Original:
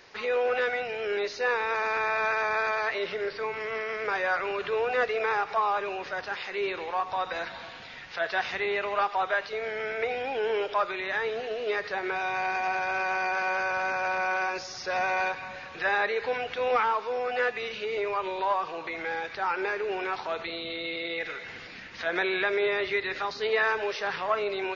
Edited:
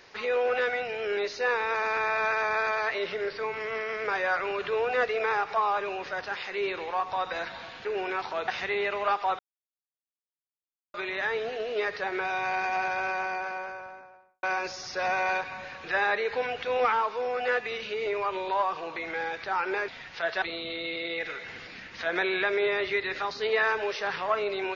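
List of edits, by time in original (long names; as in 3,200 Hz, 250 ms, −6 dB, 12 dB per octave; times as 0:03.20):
0:07.85–0:08.39: swap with 0:19.79–0:20.42
0:09.30–0:10.85: silence
0:12.71–0:14.34: fade out and dull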